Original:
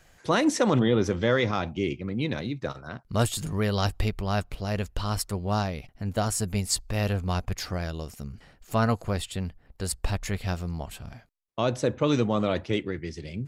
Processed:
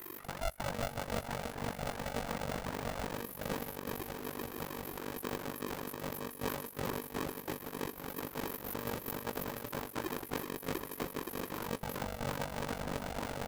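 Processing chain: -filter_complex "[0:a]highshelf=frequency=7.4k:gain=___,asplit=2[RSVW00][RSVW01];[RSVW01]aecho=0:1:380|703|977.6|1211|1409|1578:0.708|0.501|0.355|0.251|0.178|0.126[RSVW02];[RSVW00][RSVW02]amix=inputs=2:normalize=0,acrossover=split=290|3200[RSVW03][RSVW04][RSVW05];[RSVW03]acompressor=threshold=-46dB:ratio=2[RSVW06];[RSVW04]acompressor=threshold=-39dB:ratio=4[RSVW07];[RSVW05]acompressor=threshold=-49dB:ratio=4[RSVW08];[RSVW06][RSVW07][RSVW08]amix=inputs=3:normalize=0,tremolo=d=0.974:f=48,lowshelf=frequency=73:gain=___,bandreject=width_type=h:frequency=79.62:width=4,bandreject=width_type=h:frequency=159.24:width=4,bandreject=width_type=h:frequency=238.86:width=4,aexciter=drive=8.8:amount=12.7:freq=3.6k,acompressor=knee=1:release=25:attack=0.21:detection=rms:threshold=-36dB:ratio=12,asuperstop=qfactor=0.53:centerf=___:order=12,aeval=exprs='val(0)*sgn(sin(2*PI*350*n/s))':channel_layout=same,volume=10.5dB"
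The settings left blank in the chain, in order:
-9.5, 3, 5400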